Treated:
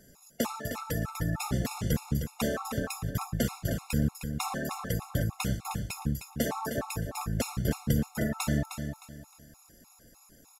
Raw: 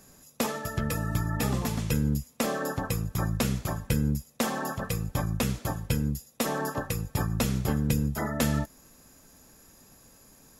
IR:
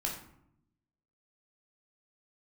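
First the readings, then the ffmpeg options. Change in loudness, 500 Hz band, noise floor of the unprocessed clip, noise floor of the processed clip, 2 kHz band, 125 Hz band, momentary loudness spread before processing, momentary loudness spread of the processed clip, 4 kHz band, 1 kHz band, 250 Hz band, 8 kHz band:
-2.5 dB, -2.5 dB, -57 dBFS, -59 dBFS, -2.5 dB, -3.0 dB, 5 LU, 5 LU, -2.5 dB, -2.5 dB, -2.5 dB, -2.5 dB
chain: -filter_complex "[0:a]asplit=2[a][b];[b]aecho=0:1:309|618|927:0.398|0.115|0.0335[c];[a][c]amix=inputs=2:normalize=0,afftfilt=real='re*gt(sin(2*PI*3.3*pts/sr)*(1-2*mod(floor(b*sr/1024/710),2)),0)':imag='im*gt(sin(2*PI*3.3*pts/sr)*(1-2*mod(floor(b*sr/1024/710),2)),0)':win_size=1024:overlap=0.75"

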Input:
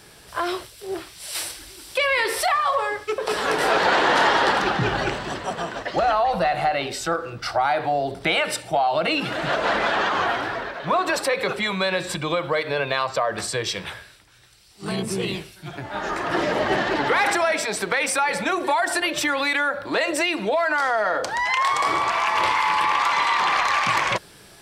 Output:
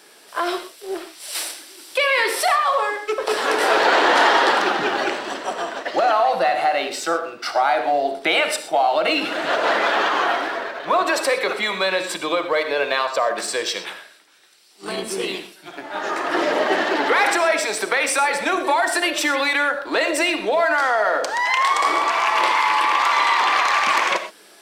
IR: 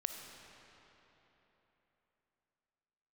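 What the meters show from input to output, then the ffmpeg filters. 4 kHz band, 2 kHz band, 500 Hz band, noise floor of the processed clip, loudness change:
+3.0 dB, +2.5 dB, +3.0 dB, -48 dBFS, +2.5 dB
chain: -filter_complex "[0:a]highpass=f=260:w=0.5412,highpass=f=260:w=1.3066,asplit=2[a][b];[b]aeval=exprs='sgn(val(0))*max(abs(val(0))-0.0158,0)':c=same,volume=-8dB[c];[a][c]amix=inputs=2:normalize=0[d];[1:a]atrim=start_sample=2205,afade=t=out:st=0.18:d=0.01,atrim=end_sample=8379[e];[d][e]afir=irnorm=-1:irlink=0,volume=1dB"

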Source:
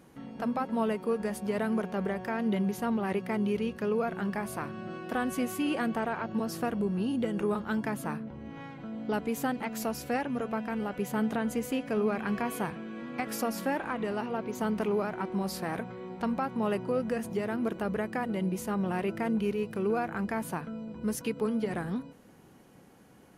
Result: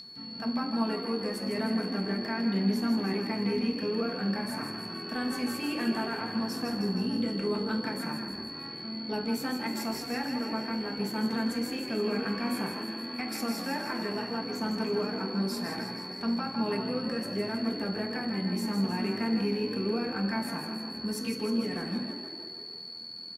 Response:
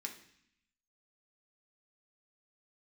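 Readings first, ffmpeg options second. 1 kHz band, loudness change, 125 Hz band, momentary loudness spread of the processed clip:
-2.5 dB, +0.5 dB, 0.0 dB, 6 LU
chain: -filter_complex "[0:a]aeval=exprs='val(0)+0.0224*sin(2*PI*4400*n/s)':c=same,asplit=9[a][b][c][d][e][f][g][h][i];[b]adelay=157,afreqshift=42,volume=-7dB[j];[c]adelay=314,afreqshift=84,volume=-11.3dB[k];[d]adelay=471,afreqshift=126,volume=-15.6dB[l];[e]adelay=628,afreqshift=168,volume=-19.9dB[m];[f]adelay=785,afreqshift=210,volume=-24.2dB[n];[g]adelay=942,afreqshift=252,volume=-28.5dB[o];[h]adelay=1099,afreqshift=294,volume=-32.8dB[p];[i]adelay=1256,afreqshift=336,volume=-37.1dB[q];[a][j][k][l][m][n][o][p][q]amix=inputs=9:normalize=0[r];[1:a]atrim=start_sample=2205[s];[r][s]afir=irnorm=-1:irlink=0"

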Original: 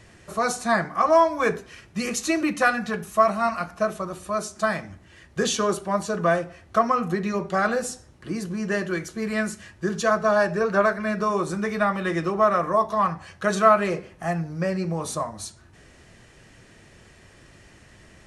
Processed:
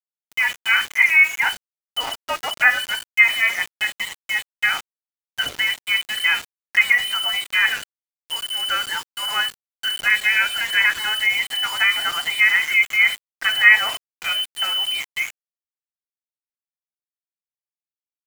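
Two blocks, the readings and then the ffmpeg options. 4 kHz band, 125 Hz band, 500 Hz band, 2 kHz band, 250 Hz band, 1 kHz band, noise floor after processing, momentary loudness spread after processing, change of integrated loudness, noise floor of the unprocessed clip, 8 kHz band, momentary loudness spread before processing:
+18.0 dB, under -20 dB, -19.0 dB, +13.0 dB, under -20 dB, -7.0 dB, under -85 dBFS, 12 LU, +5.5 dB, -52 dBFS, +1.0 dB, 11 LU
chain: -af "firequalizer=gain_entry='entry(110,0);entry(190,9);entry(400,-20);entry(820,9)':delay=0.05:min_phase=1,lowpass=f=2.7k:t=q:w=0.5098,lowpass=f=2.7k:t=q:w=0.6013,lowpass=f=2.7k:t=q:w=0.9,lowpass=f=2.7k:t=q:w=2.563,afreqshift=-3200,aeval=exprs='val(0)*gte(abs(val(0)),0.0596)':c=same,volume=-2.5dB"

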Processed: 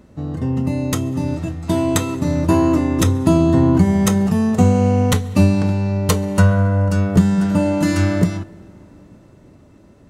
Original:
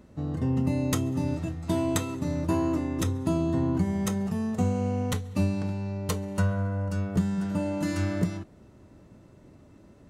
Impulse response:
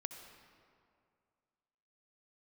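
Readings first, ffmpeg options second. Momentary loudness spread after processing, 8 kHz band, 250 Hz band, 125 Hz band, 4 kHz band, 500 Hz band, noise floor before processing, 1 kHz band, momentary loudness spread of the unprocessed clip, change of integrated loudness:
8 LU, +10.5 dB, +11.5 dB, +11.5 dB, +11.0 dB, +11.5 dB, -54 dBFS, +11.5 dB, 5 LU, +11.5 dB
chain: -filter_complex "[0:a]dynaudnorm=f=320:g=13:m=7dB,asplit=2[a][b];[1:a]atrim=start_sample=2205,asetrate=34839,aresample=44100[c];[b][c]afir=irnorm=-1:irlink=0,volume=-15dB[d];[a][d]amix=inputs=2:normalize=0,volume=4.5dB"

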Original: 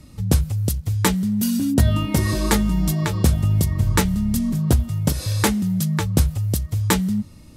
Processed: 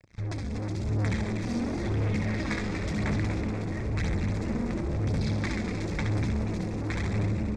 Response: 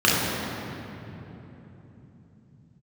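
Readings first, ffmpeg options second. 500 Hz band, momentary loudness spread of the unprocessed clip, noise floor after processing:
-5.5 dB, 4 LU, -33 dBFS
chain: -filter_complex "[0:a]bandreject=f=57.95:t=h:w=4,bandreject=f=115.9:t=h:w=4,bandreject=f=173.85:t=h:w=4,bandreject=f=231.8:t=h:w=4,asplit=2[a][b];[b]aecho=0:1:68|136|204|272|340:0.668|0.274|0.112|0.0461|0.0189[c];[a][c]amix=inputs=2:normalize=0,aeval=exprs='sgn(val(0))*max(abs(val(0))-0.0106,0)':c=same,acompressor=threshold=-22dB:ratio=6,asplit=2[d][e];[e]bass=f=250:g=13,treble=f=4k:g=14[f];[1:a]atrim=start_sample=2205,asetrate=23373,aresample=44100[g];[f][g]afir=irnorm=-1:irlink=0,volume=-37.5dB[h];[d][h]amix=inputs=2:normalize=0,asoftclip=type=tanh:threshold=-27dB,flanger=delay=0.1:depth=4.1:regen=36:speed=0.97:shape=sinusoidal,lowpass=f=6.5k:w=0.5412,lowpass=f=6.5k:w=1.3066,equalizer=f=2.1k:w=1.6:g=13,bandreject=f=2.9k:w=5.2,asplit=6[i][j][k][l][m][n];[j]adelay=240,afreqshift=110,volume=-7dB[o];[k]adelay=480,afreqshift=220,volume=-13.9dB[p];[l]adelay=720,afreqshift=330,volume=-20.9dB[q];[m]adelay=960,afreqshift=440,volume=-27.8dB[r];[n]adelay=1200,afreqshift=550,volume=-34.7dB[s];[i][o][p][q][r][s]amix=inputs=6:normalize=0,volume=1.5dB"

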